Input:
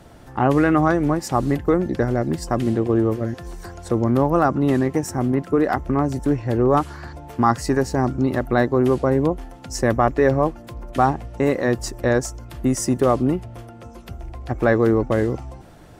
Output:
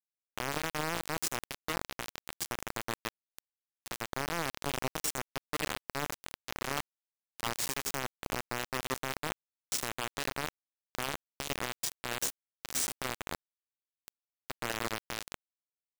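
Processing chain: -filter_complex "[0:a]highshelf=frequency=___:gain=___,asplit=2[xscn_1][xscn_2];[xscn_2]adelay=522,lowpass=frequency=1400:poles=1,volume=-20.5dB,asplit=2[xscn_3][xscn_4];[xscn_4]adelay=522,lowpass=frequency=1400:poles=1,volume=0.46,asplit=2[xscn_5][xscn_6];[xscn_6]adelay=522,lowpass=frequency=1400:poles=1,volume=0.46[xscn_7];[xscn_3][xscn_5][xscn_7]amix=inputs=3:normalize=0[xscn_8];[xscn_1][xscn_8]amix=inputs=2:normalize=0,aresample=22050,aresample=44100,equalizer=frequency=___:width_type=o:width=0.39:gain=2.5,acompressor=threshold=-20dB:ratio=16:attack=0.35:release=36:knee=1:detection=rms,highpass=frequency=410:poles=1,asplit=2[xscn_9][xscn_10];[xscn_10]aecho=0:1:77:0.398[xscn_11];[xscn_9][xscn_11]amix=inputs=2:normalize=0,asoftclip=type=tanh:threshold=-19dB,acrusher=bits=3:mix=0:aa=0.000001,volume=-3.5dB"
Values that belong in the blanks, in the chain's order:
3300, 9, 8700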